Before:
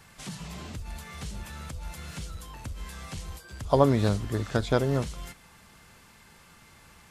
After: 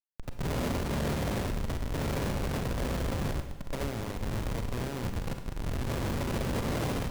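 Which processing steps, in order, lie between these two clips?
spectral levelling over time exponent 0.2; 1.46–1.94 s: FFT filter 340 Hz 0 dB, 2.3 kHz -29 dB, 9.8 kHz +13 dB; expander -20 dBFS; level rider gain up to 16 dB; Butterworth band-stop 1.4 kHz, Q 3; Schmitt trigger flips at -12 dBFS; peak limiter -21 dBFS, peak gain reduction 11.5 dB; Schroeder reverb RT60 1 s, combs from 32 ms, DRR 6.5 dB; trim -8.5 dB

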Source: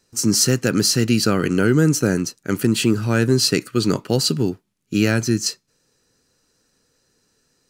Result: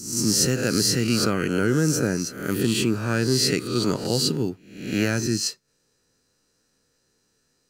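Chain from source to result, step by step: reverse spectral sustain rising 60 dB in 0.67 s; trim -6 dB

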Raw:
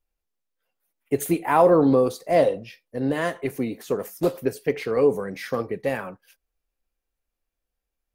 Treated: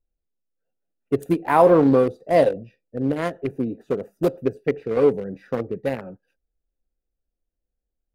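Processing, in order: local Wiener filter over 41 samples; trim +2.5 dB

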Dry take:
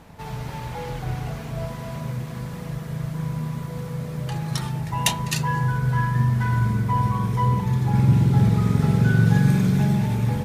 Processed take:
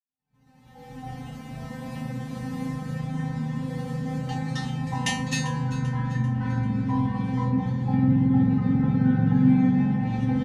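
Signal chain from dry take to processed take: fade-in on the opening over 3.01 s; expander -38 dBFS; peaking EQ 160 Hz +13.5 dB 2 oct; low-pass that closes with the level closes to 2.1 kHz, closed at -4 dBFS; in parallel at +2 dB: compression, threshold -15 dBFS, peak gain reduction 14 dB; on the sum: feedback comb 260 Hz, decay 0.34 s, harmonics all, mix 100%; small resonant body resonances 800/1800 Hz, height 8 dB, ringing for 45 ms; on a send: feedback delay 392 ms, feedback 47%, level -16 dB; on the sum: trim +7 dB

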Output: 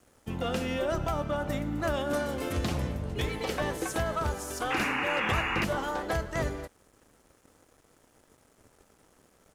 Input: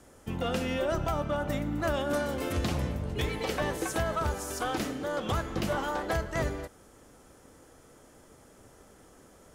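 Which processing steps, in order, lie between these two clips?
resampled via 32 kHz; crossover distortion -57 dBFS; painted sound noise, 4.70–5.65 s, 730–2900 Hz -31 dBFS

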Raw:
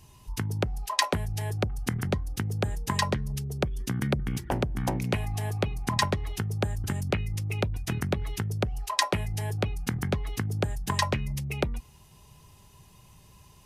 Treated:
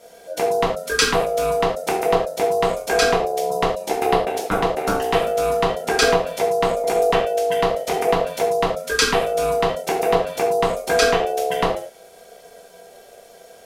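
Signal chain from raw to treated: gated-style reverb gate 140 ms falling, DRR -4 dB; ring modulator 580 Hz; trim +6 dB

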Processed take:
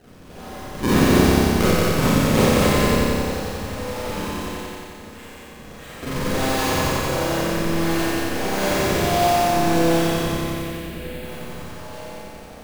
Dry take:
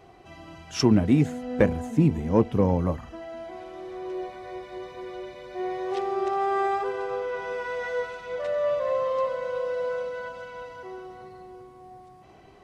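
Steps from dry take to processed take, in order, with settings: cycle switcher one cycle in 3, inverted; treble shelf 6.2 kHz -9 dB; in parallel at 0 dB: compression, threshold -36 dBFS, peak gain reduction 20.5 dB; 4.44–6.03 s: on the sum: steep high-pass 1.8 kHz 36 dB/octave; decimation with a swept rate 37×, swing 160% 1.5 Hz; 10.34–11.25 s: static phaser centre 2.5 kHz, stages 4; on a send: multi-head delay 90 ms, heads first and second, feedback 61%, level -6 dB; on the sum: Schroeder reverb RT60 0.94 s, combs from 30 ms, DRR -6.5 dB; trim -6 dB

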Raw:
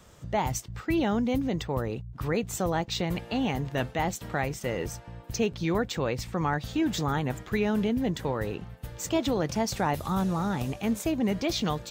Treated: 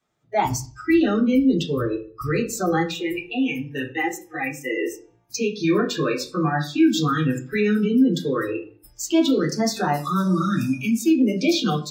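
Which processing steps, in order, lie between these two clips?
spectral noise reduction 29 dB; 10.28–10.96 s: spectral replace 410–970 Hz both; peak limiter -23.5 dBFS, peak gain reduction 7.5 dB; 2.91–5.01 s: static phaser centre 930 Hz, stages 8; reverberation RT60 0.40 s, pre-delay 3 ms, DRR -3.5 dB; trim +5 dB

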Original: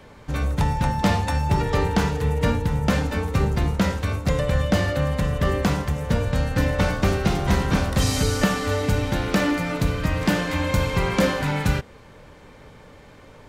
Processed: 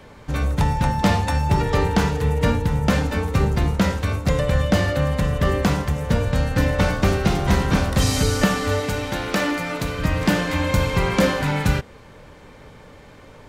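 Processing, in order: 8.80–9.99 s: bass shelf 260 Hz -9 dB; trim +2 dB

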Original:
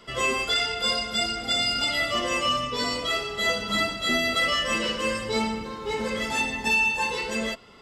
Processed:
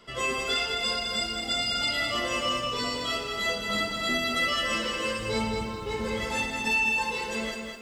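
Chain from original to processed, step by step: 5.19–6.28 s: peaking EQ 71 Hz +10 dB 1.9 oct; bit-crushed delay 210 ms, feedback 35%, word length 9-bit, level -5 dB; trim -4 dB

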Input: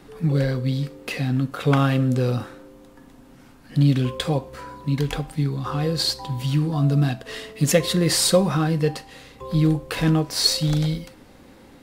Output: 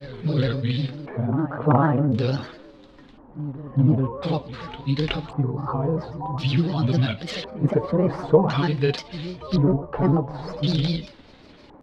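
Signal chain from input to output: reverse echo 396 ms -14 dB; LFO low-pass square 0.47 Hz 910–3800 Hz; granulator, spray 27 ms, pitch spread up and down by 3 st

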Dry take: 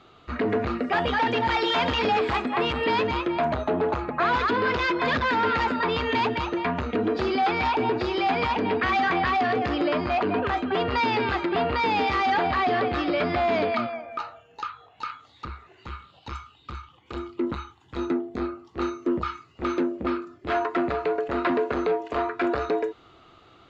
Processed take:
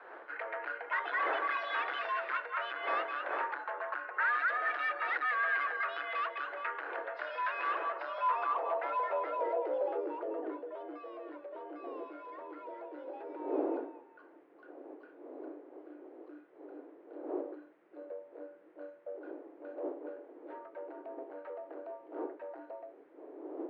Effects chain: wind noise 420 Hz -29 dBFS; high-pass 79 Hz 12 dB/octave; treble shelf 4.4 kHz -11.5 dB; reverse; upward compressor, threshold -34 dBFS; reverse; frequency shift +230 Hz; band-pass sweep 1.6 kHz -> 200 Hz, 7.78–11.03 s; band noise 170–1900 Hz -70 dBFS; trim -3.5 dB

